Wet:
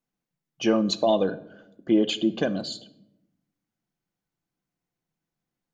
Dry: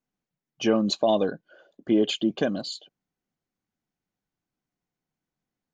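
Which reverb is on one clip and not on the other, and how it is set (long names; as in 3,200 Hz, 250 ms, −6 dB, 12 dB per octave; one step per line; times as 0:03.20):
rectangular room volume 2,300 cubic metres, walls furnished, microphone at 0.77 metres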